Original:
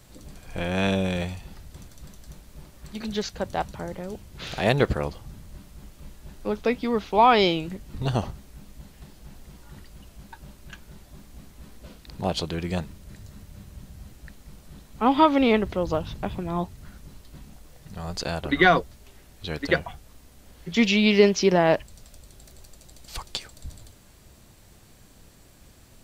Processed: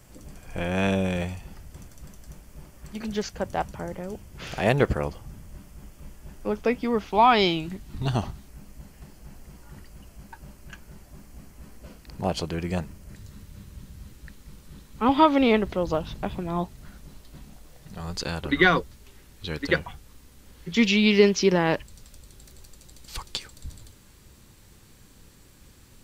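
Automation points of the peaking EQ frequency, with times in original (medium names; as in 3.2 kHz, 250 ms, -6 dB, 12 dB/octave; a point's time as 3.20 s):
peaking EQ -10.5 dB 0.31 oct
3.9 kHz
from 7.08 s 510 Hz
from 8.48 s 3.7 kHz
from 13.15 s 690 Hz
from 15.09 s 90 Hz
from 18.00 s 670 Hz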